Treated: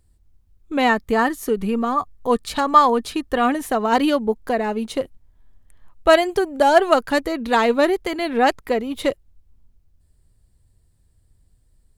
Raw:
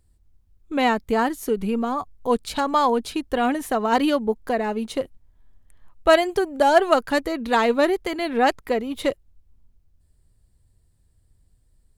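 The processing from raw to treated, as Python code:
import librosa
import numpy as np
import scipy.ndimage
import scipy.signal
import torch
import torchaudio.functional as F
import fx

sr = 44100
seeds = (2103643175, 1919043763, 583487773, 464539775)

y = fx.small_body(x, sr, hz=(1200.0, 1800.0), ring_ms=45, db=9, at=(0.89, 3.55))
y = F.gain(torch.from_numpy(y), 2.0).numpy()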